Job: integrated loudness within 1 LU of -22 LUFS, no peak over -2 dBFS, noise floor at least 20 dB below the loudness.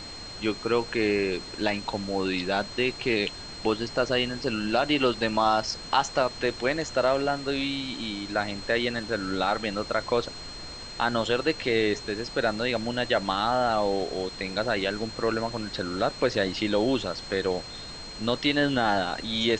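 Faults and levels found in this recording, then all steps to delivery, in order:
steady tone 4.2 kHz; tone level -40 dBFS; noise floor -40 dBFS; noise floor target -47 dBFS; loudness -27.0 LUFS; peak level -8.0 dBFS; loudness target -22.0 LUFS
-> band-stop 4.2 kHz, Q 30; noise print and reduce 7 dB; trim +5 dB

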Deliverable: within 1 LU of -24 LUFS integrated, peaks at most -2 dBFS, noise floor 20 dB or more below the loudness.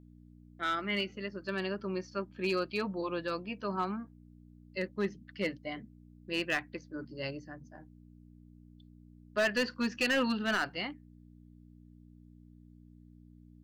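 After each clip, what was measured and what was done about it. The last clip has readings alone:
clipped samples 0.5%; clipping level -23.5 dBFS; hum 60 Hz; highest harmonic 300 Hz; hum level -54 dBFS; loudness -34.5 LUFS; peak level -23.5 dBFS; loudness target -24.0 LUFS
-> clip repair -23.5 dBFS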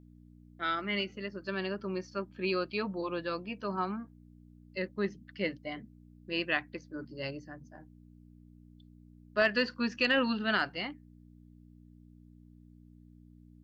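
clipped samples 0.0%; hum 60 Hz; highest harmonic 300 Hz; hum level -54 dBFS
-> de-hum 60 Hz, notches 5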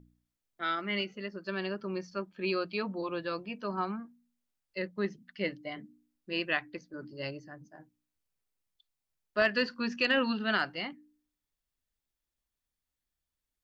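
hum not found; loudness -33.5 LUFS; peak level -14.5 dBFS; loudness target -24.0 LUFS
-> trim +9.5 dB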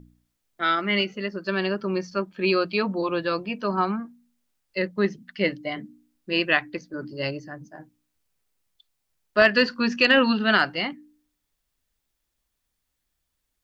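loudness -24.0 LUFS; peak level -5.0 dBFS; noise floor -79 dBFS

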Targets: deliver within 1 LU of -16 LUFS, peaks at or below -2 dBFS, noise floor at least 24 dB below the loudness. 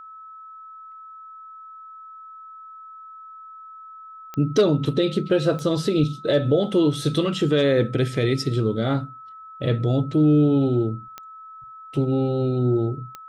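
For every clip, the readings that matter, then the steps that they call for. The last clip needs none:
clicks found 4; steady tone 1.3 kHz; tone level -39 dBFS; loudness -21.5 LUFS; peak level -8.5 dBFS; loudness target -16.0 LUFS
-> de-click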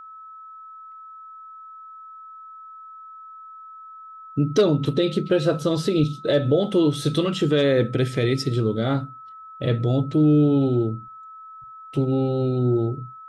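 clicks found 0; steady tone 1.3 kHz; tone level -39 dBFS
-> band-stop 1.3 kHz, Q 30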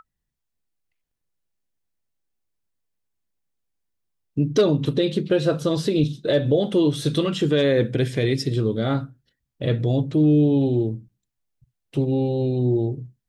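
steady tone not found; loudness -21.5 LUFS; peak level -8.0 dBFS; loudness target -16.0 LUFS
-> trim +5.5 dB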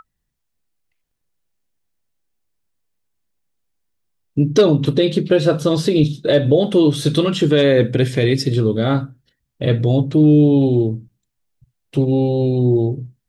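loudness -16.0 LUFS; peak level -2.5 dBFS; noise floor -75 dBFS

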